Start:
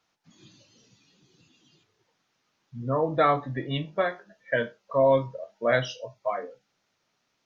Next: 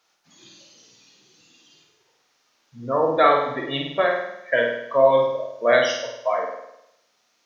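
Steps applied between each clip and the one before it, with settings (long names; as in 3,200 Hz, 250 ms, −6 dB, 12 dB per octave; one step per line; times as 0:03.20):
bass and treble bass −14 dB, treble +4 dB
on a send: flutter between parallel walls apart 8.7 metres, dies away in 0.81 s
on the sum: level +5 dB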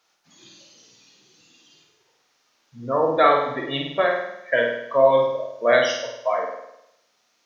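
no processing that can be heard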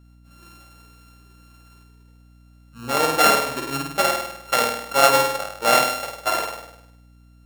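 samples sorted by size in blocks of 32 samples
mains hum 60 Hz, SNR 27 dB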